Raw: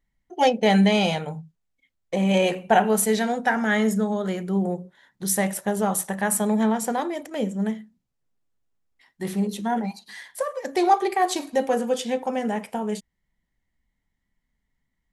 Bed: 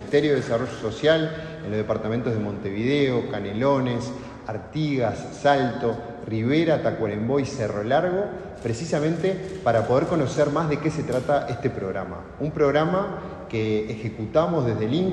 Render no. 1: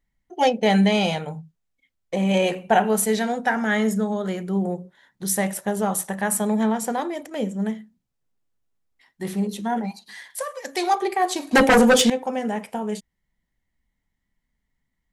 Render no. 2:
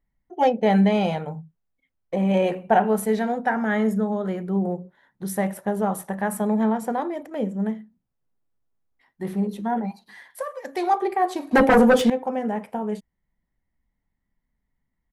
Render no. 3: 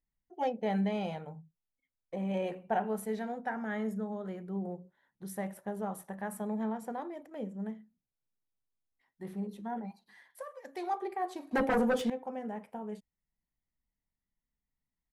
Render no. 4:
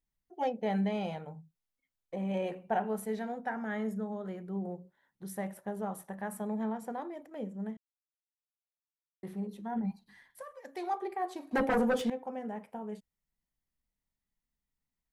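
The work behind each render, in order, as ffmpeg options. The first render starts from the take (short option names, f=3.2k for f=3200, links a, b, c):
-filter_complex "[0:a]asettb=1/sr,asplit=3[a][b][c];[a]atrim=end=10.304[d];[b]atrim=start=10.3:end=10.95,asetpts=PTS-STARTPTS,afade=t=in:d=0.004:c=qsin,afade=t=out:st=0.646:d=0.004:c=qsin,tiltshelf=f=1.3k:g=-6[e];[c]atrim=start=10.946[f];[d][e]acrossfade=d=0.004:c1=hsin:c2=qsin[g];[g][f]acrossfade=d=0.004:c1=qsin:c2=hsin,asettb=1/sr,asplit=3[h][i][j];[h]atrim=end=11.514[k];[i]atrim=start=11.51:end=12.1,asetpts=PTS-STARTPTS,afade=t=in:d=0.004:c=qsin,afade=t=out:st=0.586:d=0.004:c=qsin,aeval=exprs='0.316*sin(PI/2*3.55*val(0)/0.316)':c=same[l];[j]atrim=start=12.096[m];[k][l]acrossfade=d=0.004:c1=hsin:c2=qsin[n];[n][m]acrossfade=d=0.004:c1=qsin:c2=hsin"
-af "firequalizer=gain_entry='entry(900,0);entry(2900,-9);entry(7100,-15);entry(12000,-8)':delay=0.05:min_phase=1"
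-af "volume=-13dB"
-filter_complex "[0:a]asplit=3[a][b][c];[a]afade=t=out:st=9.74:d=0.02[d];[b]asubboost=boost=5:cutoff=220,afade=t=in:st=9.74:d=0.02,afade=t=out:st=10.57:d=0.02[e];[c]afade=t=in:st=10.57:d=0.02[f];[d][e][f]amix=inputs=3:normalize=0,asplit=3[g][h][i];[g]atrim=end=7.77,asetpts=PTS-STARTPTS,afade=t=out:st=7.766:d=0.004:c=hsin[j];[h]atrim=start=7.77:end=9.23,asetpts=PTS-STARTPTS,volume=0[k];[i]atrim=start=9.23,asetpts=PTS-STARTPTS,afade=t=in:d=0.004:c=hsin[l];[j][k][l]concat=n=3:v=0:a=1"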